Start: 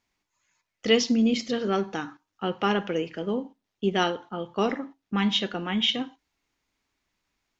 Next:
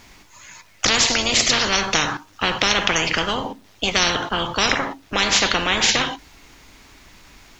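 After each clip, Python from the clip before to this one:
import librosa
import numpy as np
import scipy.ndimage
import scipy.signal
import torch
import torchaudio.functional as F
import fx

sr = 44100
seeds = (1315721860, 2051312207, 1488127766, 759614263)

y = fx.low_shelf(x, sr, hz=83.0, db=6.0)
y = fx.spectral_comp(y, sr, ratio=10.0)
y = y * 10.0 ** (5.0 / 20.0)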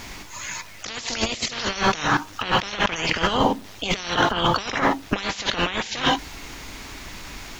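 y = fx.over_compress(x, sr, threshold_db=-26.0, ratio=-0.5)
y = y * 10.0 ** (3.5 / 20.0)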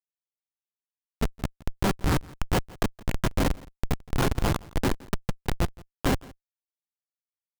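y = fx.schmitt(x, sr, flips_db=-14.5)
y = y + 10.0 ** (-22.5 / 20.0) * np.pad(y, (int(168 * sr / 1000.0), 0))[:len(y)]
y = y * 10.0 ** (3.5 / 20.0)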